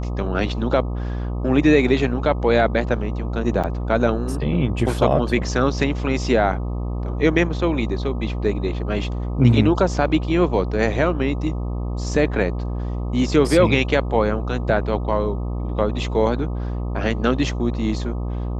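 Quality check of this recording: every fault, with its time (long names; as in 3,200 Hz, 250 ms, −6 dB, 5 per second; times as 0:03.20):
mains buzz 60 Hz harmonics 21 −25 dBFS
0:03.63–0:03.64: drop-out 6.7 ms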